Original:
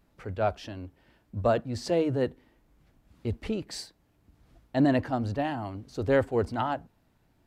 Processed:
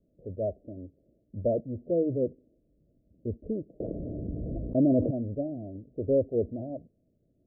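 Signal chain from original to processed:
Butterworth low-pass 640 Hz 96 dB per octave
low-shelf EQ 96 Hz −9 dB
0:03.80–0:05.11: envelope flattener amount 70%

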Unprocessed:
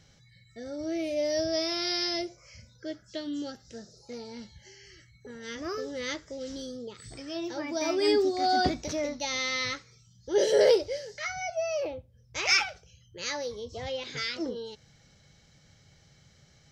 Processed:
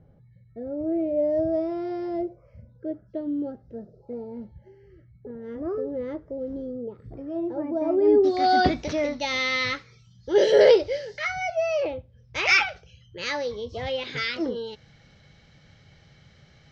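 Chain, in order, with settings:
Chebyshev low-pass filter 580 Hz, order 2, from 0:08.23 3,100 Hz
level +6.5 dB

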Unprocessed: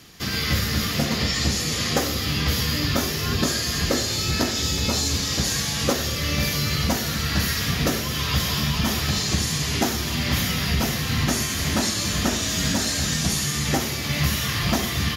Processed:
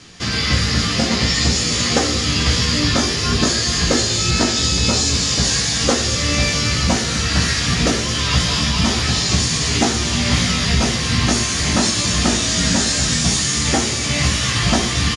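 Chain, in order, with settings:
Butterworth low-pass 9,800 Hz 72 dB per octave
double-tracking delay 17 ms −5 dB
delay with a high-pass on its return 222 ms, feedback 80%, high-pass 4,800 Hz, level −6 dB
level +4.5 dB

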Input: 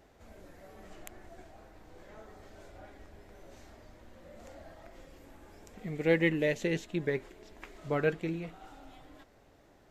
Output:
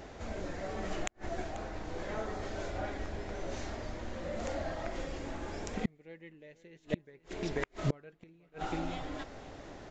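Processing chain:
single-tap delay 488 ms −18 dB
gate with flip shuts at −32 dBFS, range −38 dB
downsampling to 16,000 Hz
level +13.5 dB

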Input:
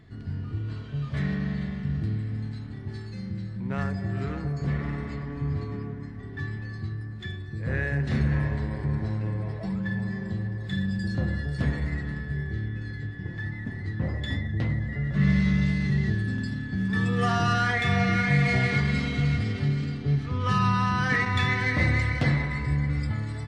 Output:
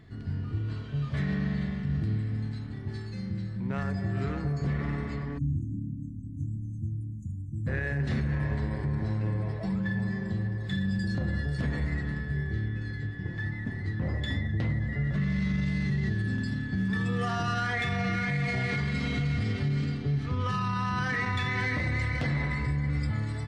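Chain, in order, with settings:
time-frequency box erased 0:05.38–0:07.67, 340–6,000 Hz
brickwall limiter −21 dBFS, peak gain reduction 10 dB

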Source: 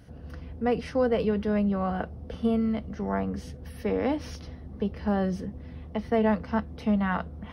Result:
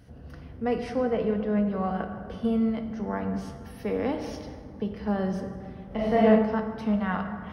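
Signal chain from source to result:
0:00.99–0:01.67: high-frequency loss of the air 240 metres
dense smooth reverb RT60 2.1 s, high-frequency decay 0.5×, DRR 5 dB
0:05.86–0:06.27: thrown reverb, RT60 0.97 s, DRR −5.5 dB
level −2 dB

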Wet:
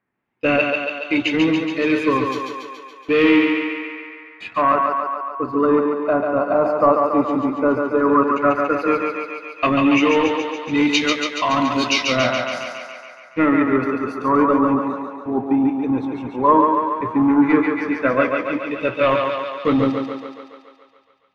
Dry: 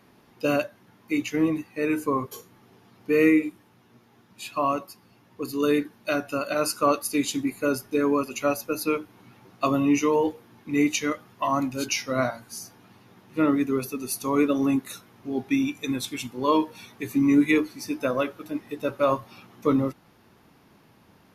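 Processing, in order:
noise gate −45 dBFS, range −17 dB
leveller curve on the samples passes 2
feedback echo with a high-pass in the loop 141 ms, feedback 68%, high-pass 250 Hz, level −3.5 dB
auto-filter low-pass sine 0.11 Hz 910–3,900 Hz
level −1.5 dB

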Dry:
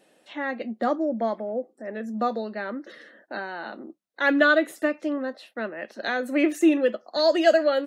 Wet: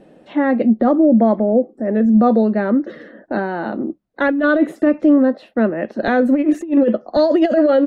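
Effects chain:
spectral tilt −5 dB per octave
compressor whose output falls as the input rises −17 dBFS, ratio −0.5
brickwall limiter −12.5 dBFS, peak gain reduction 6 dB
level +7 dB

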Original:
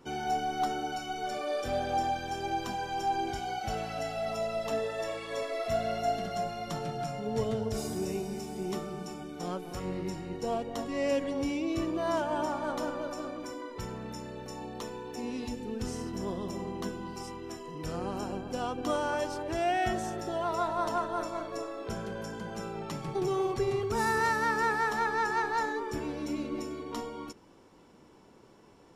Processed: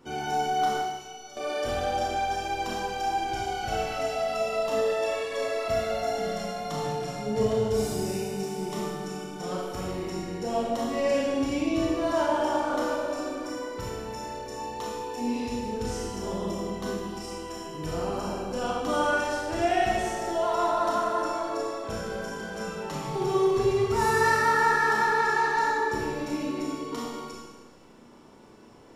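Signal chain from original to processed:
0:00.77–0:01.37: stiff-string resonator 79 Hz, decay 0.57 s, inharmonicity 0.002
four-comb reverb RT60 1.2 s, combs from 26 ms, DRR −4 dB

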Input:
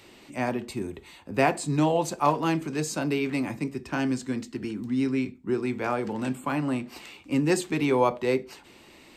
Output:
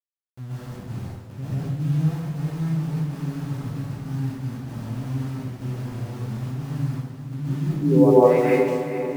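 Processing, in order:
every frequency bin delayed by itself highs late, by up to 114 ms
low-pass filter sweep 120 Hz → 2,800 Hz, 0:07.65–0:08.47
centre clipping without the shift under −39 dBFS
feedback delay with all-pass diffusion 453 ms, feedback 55%, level −10 dB
dense smooth reverb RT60 1 s, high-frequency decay 0.8×, pre-delay 115 ms, DRR −8.5 dB
level −3.5 dB

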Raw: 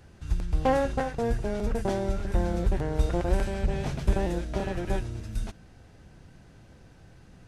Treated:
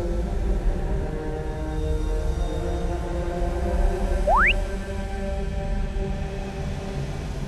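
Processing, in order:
extreme stretch with random phases 5.4×, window 0.50 s, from 0:02.60
sound drawn into the spectrogram rise, 0:04.27–0:04.52, 530–3,000 Hz −18 dBFS

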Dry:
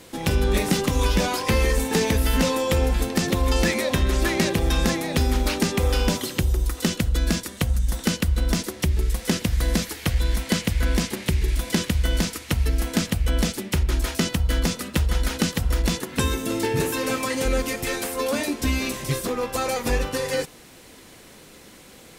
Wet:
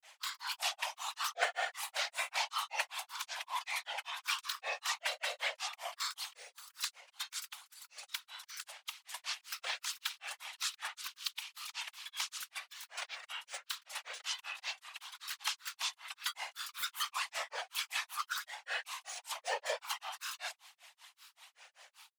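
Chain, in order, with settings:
Chebyshev high-pass with heavy ripple 770 Hz, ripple 6 dB
random phases in short frames
granular cloud 185 ms, grains 5.2 per second, pitch spread up and down by 7 semitones
level −2.5 dB

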